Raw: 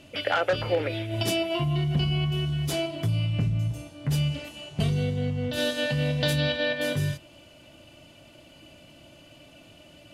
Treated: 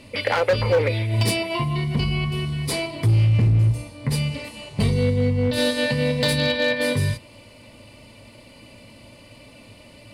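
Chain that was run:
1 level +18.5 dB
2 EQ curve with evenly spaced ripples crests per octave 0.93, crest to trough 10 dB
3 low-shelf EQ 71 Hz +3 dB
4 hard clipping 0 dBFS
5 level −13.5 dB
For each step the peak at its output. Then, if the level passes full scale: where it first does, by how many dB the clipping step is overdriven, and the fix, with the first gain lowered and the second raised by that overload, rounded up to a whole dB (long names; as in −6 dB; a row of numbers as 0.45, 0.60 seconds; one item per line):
+6.5, +7.5, +7.5, 0.0, −13.5 dBFS
step 1, 7.5 dB
step 1 +10.5 dB, step 5 −5.5 dB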